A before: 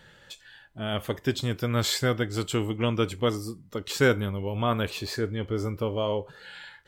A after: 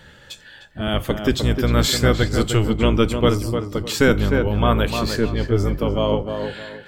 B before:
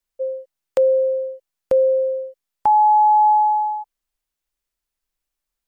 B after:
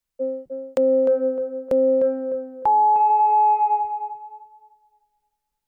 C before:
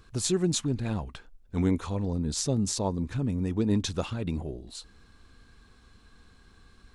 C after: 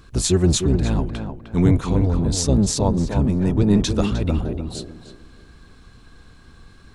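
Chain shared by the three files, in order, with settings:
octaver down 1 oct, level +1 dB; on a send: tape echo 0.304 s, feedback 32%, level -5 dB, low-pass 1600 Hz; on the sum: maximiser +10 dB; match loudness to -20 LUFS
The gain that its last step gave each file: -3.0, -11.0, -3.0 dB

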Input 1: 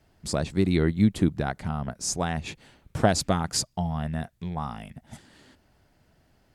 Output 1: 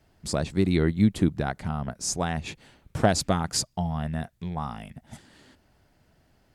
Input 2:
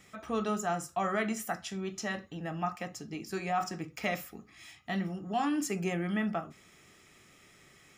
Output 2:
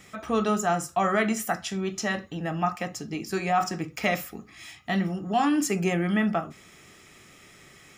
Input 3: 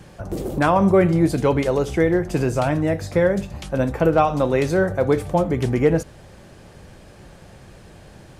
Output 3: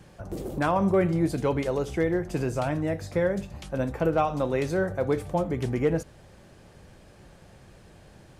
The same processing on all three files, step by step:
hard clip -6.5 dBFS; match loudness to -27 LUFS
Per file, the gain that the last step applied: 0.0, +7.5, -7.0 dB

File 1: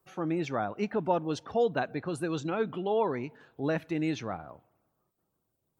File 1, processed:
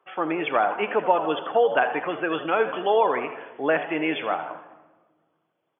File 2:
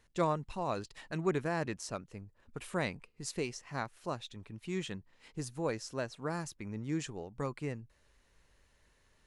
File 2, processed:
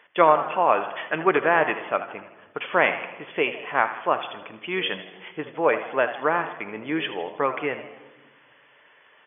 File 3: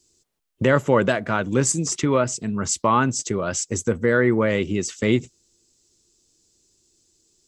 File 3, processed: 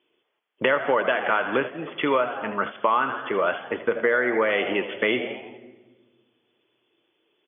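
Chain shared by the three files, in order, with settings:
HPF 550 Hz 12 dB/oct; on a send: frequency-shifting echo 80 ms, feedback 48%, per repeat +94 Hz, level -13 dB; on the sum: shoebox room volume 1000 m³, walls mixed, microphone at 0.41 m; compressor 6:1, threshold -27 dBFS; brick-wall FIR low-pass 3500 Hz; match loudness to -24 LUFS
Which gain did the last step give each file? +12.5, +18.0, +9.0 dB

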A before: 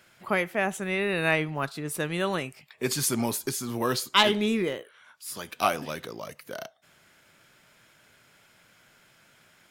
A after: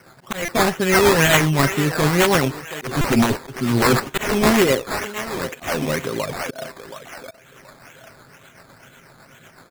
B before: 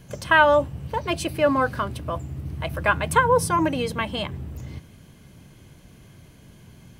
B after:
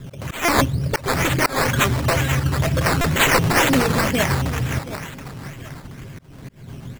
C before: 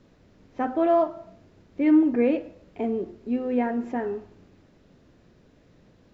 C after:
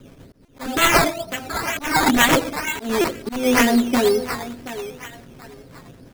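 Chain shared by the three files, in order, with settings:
air absorption 120 m; wrapped overs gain 19.5 dB; added harmonics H 7 -9 dB, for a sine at -6.5 dBFS; dynamic EQ 2000 Hz, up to +5 dB, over -38 dBFS, Q 2.1; rotary speaker horn 8 Hz; on a send: thinning echo 0.726 s, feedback 37%, high-pass 640 Hz, level -8.5 dB; on the sum: low-pass opened by the level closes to 2900 Hz, open at -20 dBFS; comb 7.5 ms, depth 35%; decimation with a swept rate 12×, swing 60% 2.1 Hz; auto swell 0.229 s; stuck buffer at 0.45/3.01, samples 128, times 10; match loudness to -19 LUFS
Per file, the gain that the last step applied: +12.5, +10.0, +10.5 dB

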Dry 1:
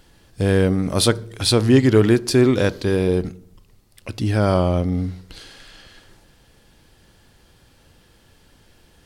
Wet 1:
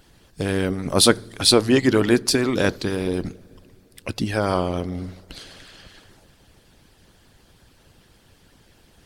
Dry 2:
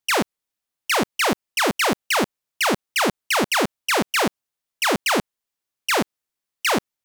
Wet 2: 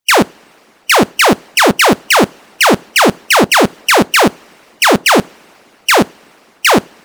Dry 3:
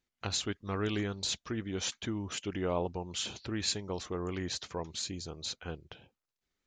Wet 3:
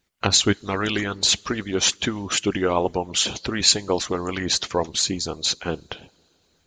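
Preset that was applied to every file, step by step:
two-slope reverb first 0.38 s, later 4 s, from -18 dB, DRR 16.5 dB; harmonic-percussive split harmonic -15 dB; normalise peaks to -1.5 dBFS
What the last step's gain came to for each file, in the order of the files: +4.0, +12.0, +16.5 dB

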